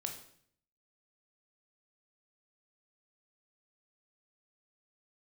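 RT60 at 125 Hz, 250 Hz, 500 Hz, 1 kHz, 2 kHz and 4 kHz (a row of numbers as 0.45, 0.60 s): 0.85, 0.75, 0.65, 0.55, 0.60, 0.55 s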